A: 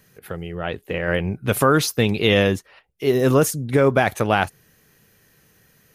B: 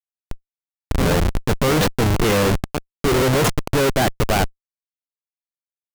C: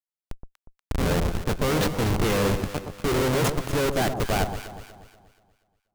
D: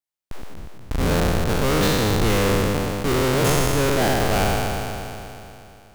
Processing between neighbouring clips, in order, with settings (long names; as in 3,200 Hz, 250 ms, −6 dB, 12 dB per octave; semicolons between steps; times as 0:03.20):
low-pass that shuts in the quiet parts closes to 320 Hz, open at −12 dBFS; backwards echo 635 ms −12.5 dB; comparator with hysteresis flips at −21 dBFS; level +5 dB
delay that swaps between a low-pass and a high-pass 120 ms, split 1,100 Hz, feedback 63%, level −7 dB; level −6.5 dB
peak hold with a decay on every bin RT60 2.89 s